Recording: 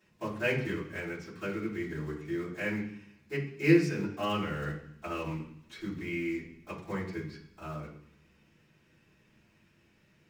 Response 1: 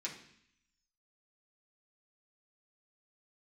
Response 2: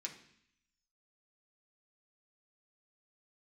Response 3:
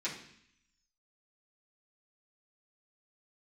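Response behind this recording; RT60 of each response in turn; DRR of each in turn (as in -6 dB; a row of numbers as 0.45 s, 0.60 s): 3; 0.65 s, 0.65 s, 0.65 s; -5.0 dB, -0.5 dB, -10.5 dB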